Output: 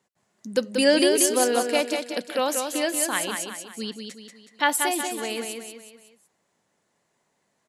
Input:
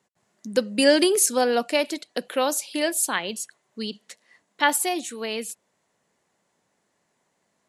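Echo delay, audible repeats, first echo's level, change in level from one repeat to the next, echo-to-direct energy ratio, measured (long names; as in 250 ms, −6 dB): 185 ms, 4, −5.5 dB, −7.0 dB, −4.5 dB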